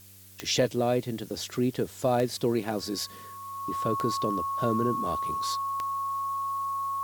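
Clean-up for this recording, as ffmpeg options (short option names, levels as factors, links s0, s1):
-af "adeclick=t=4,bandreject=f=97.3:t=h:w=4,bandreject=f=194.6:t=h:w=4,bandreject=f=291.9:t=h:w=4,bandreject=f=389.2:t=h:w=4,bandreject=f=486.5:t=h:w=4,bandreject=f=583.8:t=h:w=4,bandreject=f=1100:w=30,afftdn=nr=29:nf=-45"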